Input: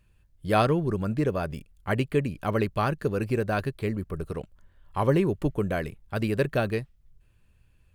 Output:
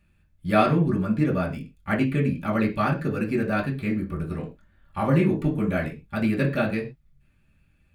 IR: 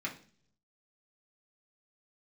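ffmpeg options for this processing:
-filter_complex "[0:a]asettb=1/sr,asplit=3[link_01][link_02][link_03];[link_01]atrim=end=3.814[link_04];[link_02]atrim=start=3.81:end=5.81,asetpts=PTS-STARTPTS,afade=type=in:duration=0.004:curve=qsin,afade=type=out:start_time=1.996:duration=0.004:curve=qsin,asplit=2[link_05][link_06];[link_06]adelay=25,volume=-11dB[link_07];[link_05][link_07]amix=inputs=2:normalize=0,atrim=end_sample=88200[link_08];[link_03]atrim=start=5.806[link_09];[link_04][link_08]acrossfade=duration=0.004:curve1=hsin:curve2=qsin[link_10];[link_10][link_09]acrossfade=duration=0.004:curve1=qsin:curve2=hsin[link_11];[1:a]atrim=start_sample=2205,afade=type=out:start_time=0.18:duration=0.01,atrim=end_sample=8379[link_12];[link_11][link_12]afir=irnorm=-1:irlink=0"

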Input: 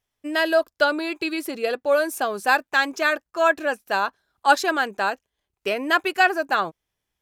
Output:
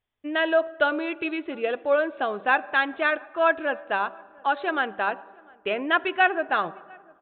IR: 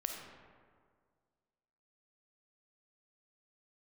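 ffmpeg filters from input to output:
-filter_complex "[0:a]bandreject=frequency=192.4:width_type=h:width=4,bandreject=frequency=384.8:width_type=h:width=4,bandreject=frequency=577.2:width_type=h:width=4,bandreject=frequency=769.6:width_type=h:width=4,bandreject=frequency=962:width_type=h:width=4,bandreject=frequency=1154.4:width_type=h:width=4,asettb=1/sr,asplit=3[link_01][link_02][link_03];[link_01]atrim=end=4.004[link_04];[link_02]atrim=start=4:end=4.77,asetpts=PTS-STARTPTS,afade=type=in:duration=0.004:curve=qsin,afade=type=out:start_time=0.766:duration=0.004:curve=qsin,acompressor=threshold=-19dB:ratio=3[link_05];[link_03]atrim=start=4.766[link_06];[link_04][link_05]acrossfade=duration=0.004:curve1=hsin:curve2=qsin[link_07];[link_07][link_06]acrossfade=duration=0.004:curve1=qsin:curve2=hsin,asplit=2[link_08][link_09];[link_09]adelay=699.7,volume=-27dB,highshelf=frequency=4000:gain=-15.7[link_10];[link_08][link_10]amix=inputs=2:normalize=0,asplit=2[link_11][link_12];[1:a]atrim=start_sample=2205,highshelf=frequency=4300:gain=-11.5[link_13];[link_12][link_13]afir=irnorm=-1:irlink=0,volume=-15.5dB[link_14];[link_11][link_14]amix=inputs=2:normalize=0,aresample=8000,aresample=44100,volume=-3dB"

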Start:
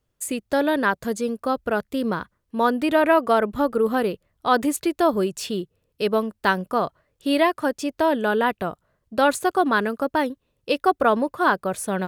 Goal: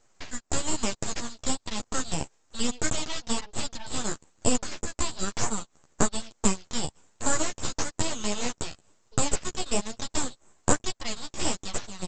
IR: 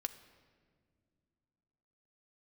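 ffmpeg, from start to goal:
-af "aexciter=amount=10.7:drive=6.6:freq=3000,acompressor=threshold=-24dB:ratio=6,lowpass=frequency=4300:width_type=q:width=3.7,tiltshelf=frequency=640:gain=-6,aresample=16000,aeval=exprs='abs(val(0))':channel_layout=same,aresample=44100,flanger=delay=8.4:depth=5.4:regen=-4:speed=1.1:shape=sinusoidal,volume=-5dB"

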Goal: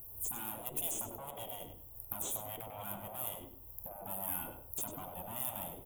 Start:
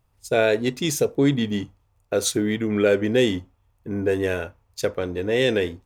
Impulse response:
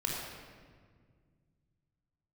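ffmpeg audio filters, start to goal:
-filter_complex "[0:a]aeval=exprs='(tanh(15.8*val(0)+0.6)-tanh(0.6))/15.8':channel_layout=same,firequalizer=gain_entry='entry(120,0);entry(200,-5);entry(320,7);entry(1000,-2);entry(1700,-18);entry(3200,-5);entry(4600,-29);entry(7000,-1);entry(14000,8)':delay=0.05:min_phase=1,asplit=2[link_01][link_02];[link_02]acompressor=threshold=-45dB:ratio=6,volume=1.5dB[link_03];[link_01][link_03]amix=inputs=2:normalize=0,alimiter=level_in=1dB:limit=-24dB:level=0:latency=1:release=103,volume=-1dB,aexciter=amount=14.5:drive=2.8:freq=10000,afftfilt=real='re*lt(hypot(re,im),0.0355)':imag='im*lt(hypot(re,im),0.0355)':win_size=1024:overlap=0.75,asplit=2[link_04][link_05];[link_05]adelay=98,lowpass=frequency=4800:poles=1,volume=-7.5dB,asplit=2[link_06][link_07];[link_07]adelay=98,lowpass=frequency=4800:poles=1,volume=0.26,asplit=2[link_08][link_09];[link_09]adelay=98,lowpass=frequency=4800:poles=1,volume=0.26[link_10];[link_04][link_06][link_08][link_10]amix=inputs=4:normalize=0,volume=2dB"

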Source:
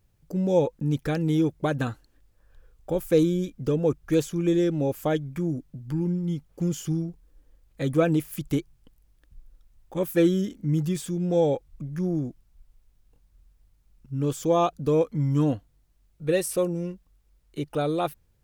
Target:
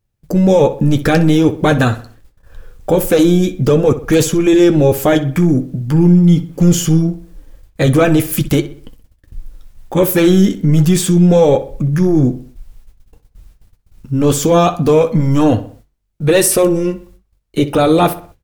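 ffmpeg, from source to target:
ffmpeg -i in.wav -filter_complex "[0:a]agate=range=-24dB:threshold=-57dB:ratio=16:detection=peak,apsyclip=25dB,flanger=delay=8.6:depth=2.5:regen=-51:speed=0.24:shape=sinusoidal,asplit=2[link_01][link_02];[link_02]adelay=63,lowpass=frequency=3500:poles=1,volume=-13.5dB,asplit=2[link_03][link_04];[link_04]adelay=63,lowpass=frequency=3500:poles=1,volume=0.43,asplit=2[link_05][link_06];[link_06]adelay=63,lowpass=frequency=3500:poles=1,volume=0.43,asplit=2[link_07][link_08];[link_08]adelay=63,lowpass=frequency=3500:poles=1,volume=0.43[link_09];[link_03][link_05][link_07][link_09]amix=inputs=4:normalize=0[link_10];[link_01][link_10]amix=inputs=2:normalize=0,volume=-2dB" out.wav

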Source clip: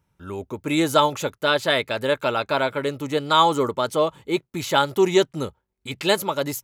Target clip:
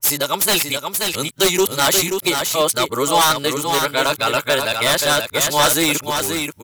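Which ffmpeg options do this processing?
ffmpeg -i in.wav -filter_complex "[0:a]areverse,crystalizer=i=9:c=0,aeval=exprs='0.398*(abs(mod(val(0)/0.398+3,4)-2)-1)':channel_layout=same,asplit=2[link_01][link_02];[link_02]aecho=0:1:531:0.531[link_03];[link_01][link_03]amix=inputs=2:normalize=0,adynamicequalizer=threshold=0.0447:dfrequency=2400:dqfactor=0.7:tfrequency=2400:tqfactor=0.7:attack=5:release=100:ratio=0.375:range=1.5:mode=cutabove:tftype=highshelf" out.wav

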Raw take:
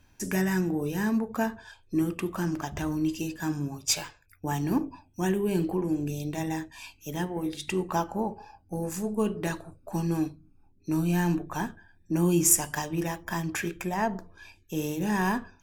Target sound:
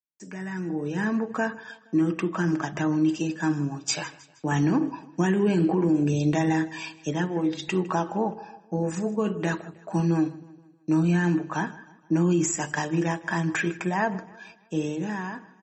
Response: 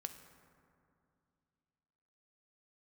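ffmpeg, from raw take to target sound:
-filter_complex "[0:a]agate=range=-34dB:threshold=-51dB:ratio=16:detection=peak,highpass=frequency=140:width=0.5412,highpass=frequency=140:width=1.3066,highshelf=frequency=2700:gain=-5,aecho=1:1:6.3:0.33,adynamicequalizer=threshold=0.00447:dfrequency=1600:dqfactor=2:tfrequency=1600:tqfactor=2:attack=5:release=100:ratio=0.375:range=2.5:mode=boostabove:tftype=bell,asplit=3[link_01][link_02][link_03];[link_01]afade=type=out:start_time=4.51:duration=0.02[link_04];[link_02]acontrast=21,afade=type=in:start_time=4.51:duration=0.02,afade=type=out:start_time=7.12:duration=0.02[link_05];[link_03]afade=type=in:start_time=7.12:duration=0.02[link_06];[link_04][link_05][link_06]amix=inputs=3:normalize=0,alimiter=limit=-18.5dB:level=0:latency=1:release=91,dynaudnorm=framelen=160:gausssize=11:maxgain=13dB,aecho=1:1:157|314|471|628:0.1|0.048|0.023|0.0111,volume=-8.5dB" -ar 44100 -c:a libmp3lame -b:a 32k

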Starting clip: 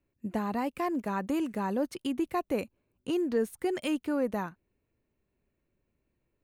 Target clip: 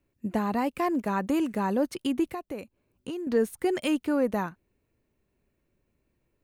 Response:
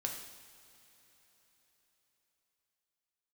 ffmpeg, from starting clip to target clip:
-filter_complex "[0:a]asettb=1/sr,asplit=3[link_01][link_02][link_03];[link_01]atrim=end=2.274[link_04];[link_02]atrim=start=2.27:end=3.27,asetpts=PTS-STARTPTS,afade=type=in:duration=0.004:curve=qsin,afade=type=out:start_time=0.996:duration=0.004:curve=qsin,acompressor=threshold=-40dB:ratio=3[link_05];[link_03]atrim=start=3.266[link_06];[link_04][link_05]acrossfade=duration=0.004:curve1=hsin:curve2=qsin[link_07];[link_07][link_06]acrossfade=duration=0.004:curve1=qsin:curve2=hsin,volume=4dB"

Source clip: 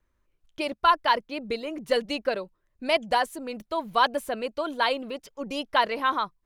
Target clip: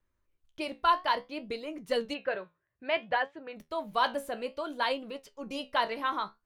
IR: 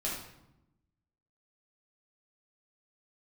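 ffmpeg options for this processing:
-filter_complex "[0:a]flanger=delay=9.8:depth=8.4:regen=62:speed=0.59:shape=triangular,asplit=3[link_01][link_02][link_03];[link_01]afade=type=out:start_time=2.13:duration=0.02[link_04];[link_02]highpass=100,equalizer=frequency=110:width_type=q:width=4:gain=9,equalizer=frequency=240:width_type=q:width=4:gain=-9,equalizer=frequency=1700:width_type=q:width=4:gain=7,lowpass=frequency=3300:width=0.5412,lowpass=frequency=3300:width=1.3066,afade=type=in:start_time=2.13:duration=0.02,afade=type=out:start_time=3.55:duration=0.02[link_05];[link_03]afade=type=in:start_time=3.55:duration=0.02[link_06];[link_04][link_05][link_06]amix=inputs=3:normalize=0,volume=-1.5dB"

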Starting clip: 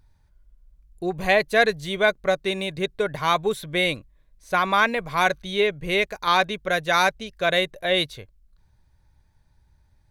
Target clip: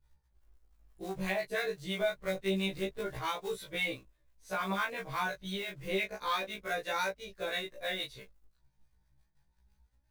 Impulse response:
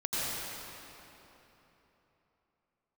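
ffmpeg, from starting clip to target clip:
-filter_complex "[0:a]flanger=delay=17.5:depth=4.6:speed=0.28,agate=range=-33dB:threshold=-58dB:ratio=3:detection=peak,asettb=1/sr,asplit=3[link_01][link_02][link_03];[link_01]atrim=end=2.024[link_04];[link_02]atrim=start=2.02:end=3.19,asetpts=PTS-STARTPTS,afade=type=in:duration=0.004:curve=qsin,afade=type=out:start_time=1.166:duration=0.004:curve=qsin,lowshelf=frequency=130:gain=10.5[link_05];[link_03]atrim=start=3.186[link_06];[link_04][link_05]acrossfade=duration=0.004:curve1=hsin:curve2=qsin[link_07];[link_07][link_06]acrossfade=duration=0.004:curve1=qsin:curve2=hsin,asettb=1/sr,asplit=3[link_08][link_09][link_10];[link_08]atrim=end=6.514[link_11];[link_09]atrim=start=6.51:end=8.07,asetpts=PTS-STARTPTS,afade=type=in:duration=0.004:curve=qsin,afade=type=out:start_time=1.556:duration=0.004:curve=qsin,bandreject=frequency=3100:width=10[link_12];[link_10]atrim=start=8.066[link_13];[link_11][link_12]acrossfade=duration=0.004:curve1=hsin:curve2=qsin[link_14];[link_14][link_13]acrossfade=duration=0.004:curve1=qsin:curve2=hsin,acrusher=bits=5:mode=log:mix=0:aa=0.000001,acrossover=split=850[link_15][link_16];[link_15]aeval=exprs='val(0)*(1-0.5/2+0.5/2*cos(2*PI*5.9*n/s))':channel_layout=same[link_17];[link_16]aeval=exprs='val(0)*(1-0.5/2-0.5/2*cos(2*PI*5.9*n/s))':channel_layout=same[link_18];[link_17][link_18]amix=inputs=2:normalize=0,acompressor=threshold=-29dB:ratio=3,afftfilt=real='re*1.73*eq(mod(b,3),0)':imag='im*1.73*eq(mod(b,3),0)':win_size=2048:overlap=0.75"

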